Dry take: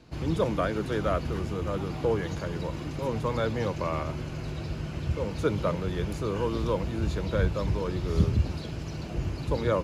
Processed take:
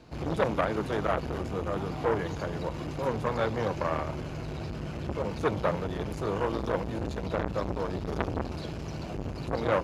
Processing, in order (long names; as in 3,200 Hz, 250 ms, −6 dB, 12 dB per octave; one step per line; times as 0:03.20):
parametric band 740 Hz +4.5 dB 1.8 octaves
saturating transformer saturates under 1,300 Hz